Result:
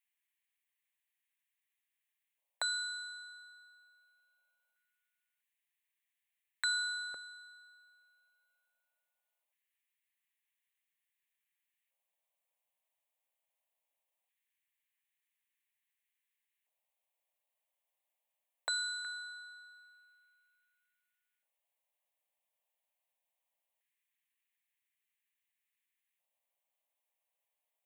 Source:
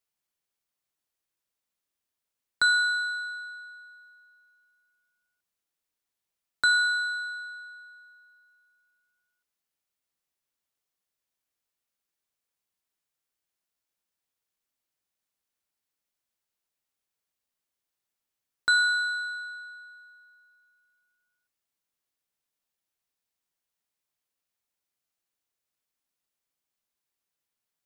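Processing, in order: fixed phaser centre 1400 Hz, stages 6; LFO high-pass square 0.21 Hz 530–1700 Hz

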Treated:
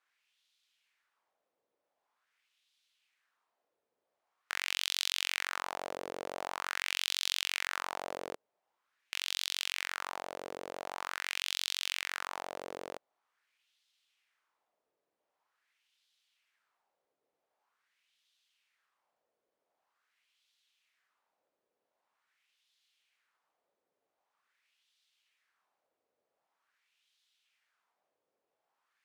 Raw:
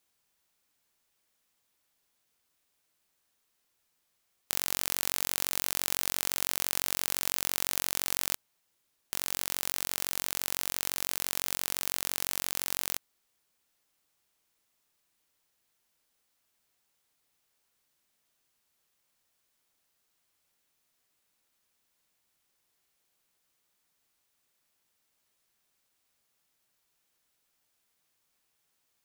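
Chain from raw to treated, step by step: wah 0.45 Hz 480–3600 Hz, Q 2.4; gain +8.5 dB

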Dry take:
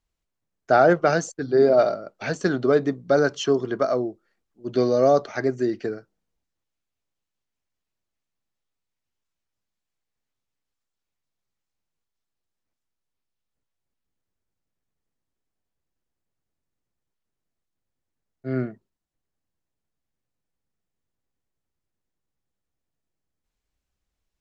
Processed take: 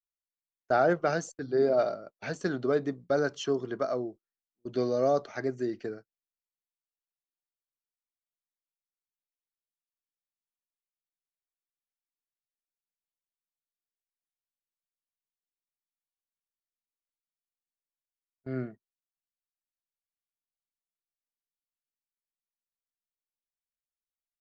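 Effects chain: gate -36 dBFS, range -23 dB; gain -8 dB

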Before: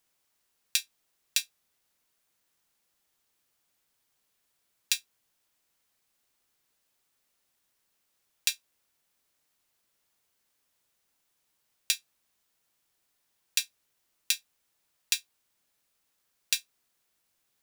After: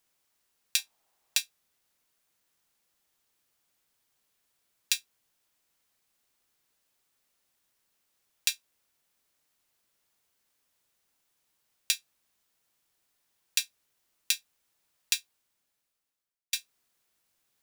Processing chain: 0.78–1.38 bell 800 Hz +11 dB 1 oct; 15.17–16.53 fade out

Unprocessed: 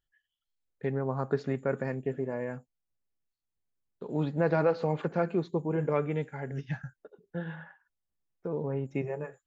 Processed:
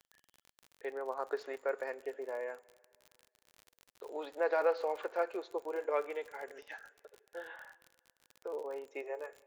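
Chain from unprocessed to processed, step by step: inverse Chebyshev high-pass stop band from 170 Hz, stop band 50 dB; on a send at -23 dB: reverb RT60 2.0 s, pre-delay 82 ms; on the sum: crackle 48/s -40 dBFS; gain -2.5 dB

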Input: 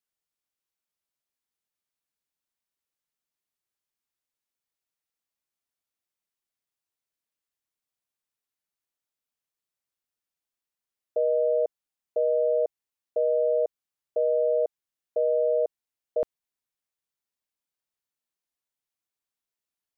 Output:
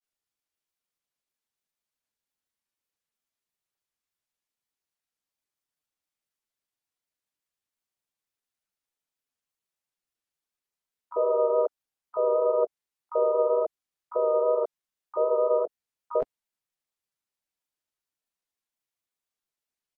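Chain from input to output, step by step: grains 89 ms, grains 26/s, spray 13 ms, pitch spread up and down by 0 st; harmoniser -4 st -13 dB, -3 st -15 dB, +12 st -12 dB; gain +1.5 dB

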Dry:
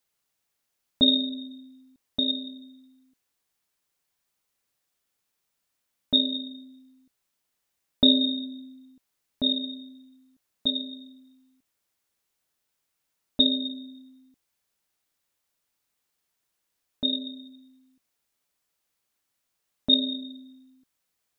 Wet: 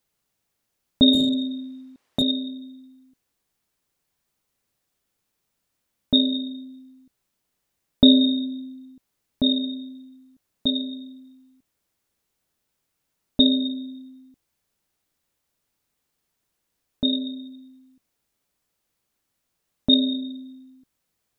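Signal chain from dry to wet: 1.13–2.22 overdrive pedal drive 19 dB, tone 2100 Hz, clips at -12 dBFS; low shelf 500 Hz +8.5 dB; gain +1 dB

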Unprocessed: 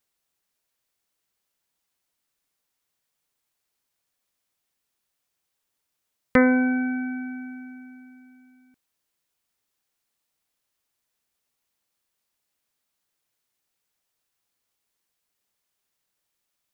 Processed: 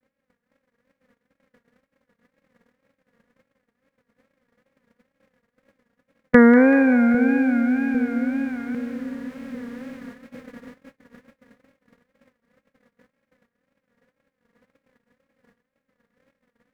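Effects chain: per-bin compression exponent 0.4; wow and flutter 130 cents; small resonant body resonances 200/520/1700 Hz, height 7 dB, ringing for 30 ms; on a send: split-band echo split 520 Hz, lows 0.8 s, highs 0.192 s, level -10.5 dB; on the sum: gate -38 dBFS, range -39 dB

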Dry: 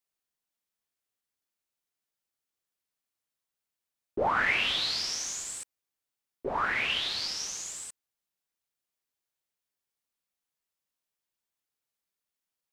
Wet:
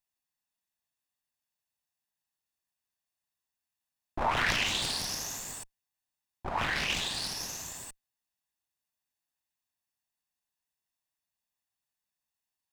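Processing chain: minimum comb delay 1.1 ms; Doppler distortion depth 0.97 ms

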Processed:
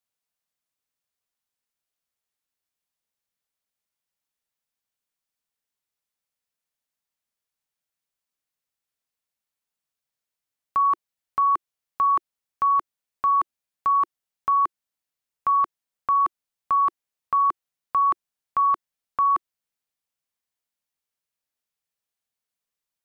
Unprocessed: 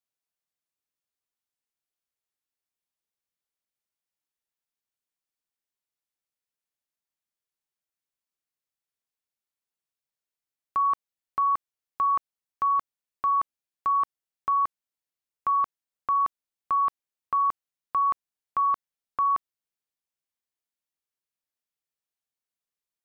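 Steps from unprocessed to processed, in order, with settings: bell 350 Hz -8 dB 0.21 oct; gain +3.5 dB

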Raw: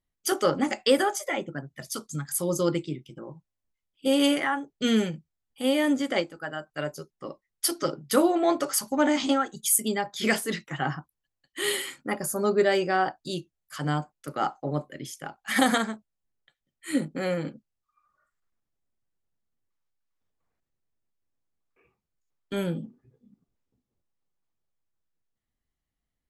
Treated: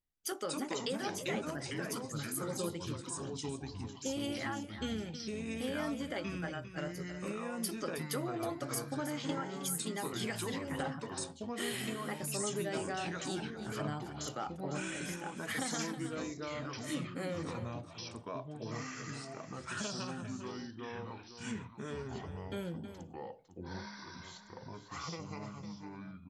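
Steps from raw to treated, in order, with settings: compressor, threshold -28 dBFS, peak gain reduction 12.5 dB; on a send: echo 0.318 s -11 dB; on the sum: echoes that change speed 0.17 s, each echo -4 st, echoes 3; gain -7.5 dB

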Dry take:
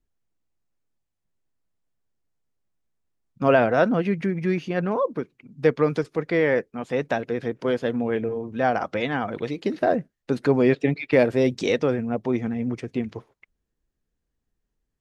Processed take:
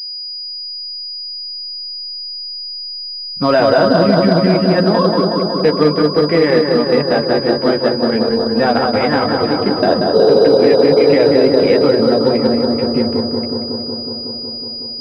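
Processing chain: chorus voices 4, 0.18 Hz, delay 12 ms, depth 2.1 ms; in parallel at +0.5 dB: compressor, threshold -31 dBFS, peak gain reduction 14 dB; on the sum: spectral repair 10.17–11.11, 320–1500 Hz after; on a send: analogue delay 0.184 s, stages 2048, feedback 80%, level -4 dB; on the sum: maximiser +9.5 dB; pulse-width modulation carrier 4900 Hz; gain -1 dB

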